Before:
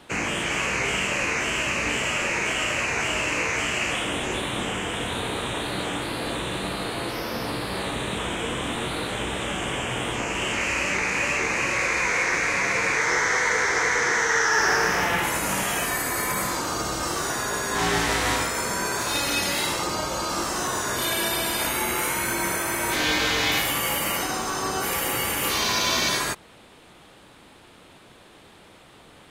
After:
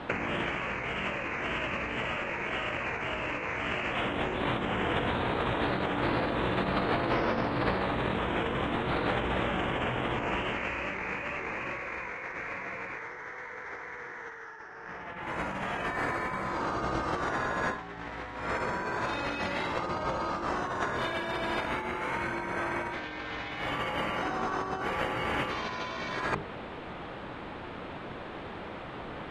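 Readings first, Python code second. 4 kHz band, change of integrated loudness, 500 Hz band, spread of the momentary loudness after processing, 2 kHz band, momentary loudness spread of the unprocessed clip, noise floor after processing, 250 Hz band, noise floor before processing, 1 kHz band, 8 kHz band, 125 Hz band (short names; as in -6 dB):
-13.0 dB, -8.5 dB, -4.0 dB, 12 LU, -9.0 dB, 7 LU, -42 dBFS, -3.5 dB, -51 dBFS, -4.5 dB, -28.0 dB, -3.0 dB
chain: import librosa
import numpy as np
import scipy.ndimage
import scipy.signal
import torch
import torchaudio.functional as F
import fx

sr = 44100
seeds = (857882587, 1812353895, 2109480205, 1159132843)

y = scipy.signal.sosfilt(scipy.signal.butter(2, 2000.0, 'lowpass', fs=sr, output='sos'), x)
y = fx.hum_notches(y, sr, base_hz=50, count=9)
y = fx.over_compress(y, sr, threshold_db=-34.0, ratio=-0.5)
y = y * 10.0 ** (3.5 / 20.0)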